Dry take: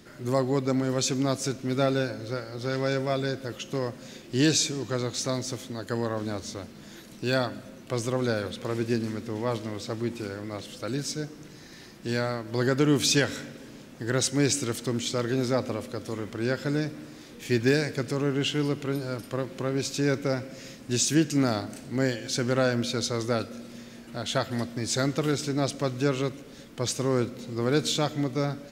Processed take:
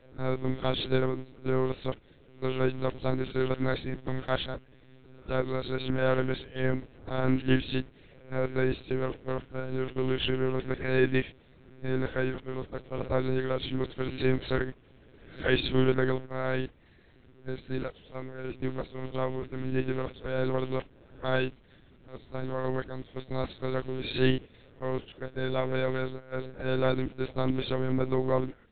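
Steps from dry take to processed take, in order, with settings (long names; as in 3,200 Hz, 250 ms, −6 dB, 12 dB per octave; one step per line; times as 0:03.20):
played backwards from end to start
one-pitch LPC vocoder at 8 kHz 130 Hz
noise gate −34 dBFS, range −9 dB
level −1.5 dB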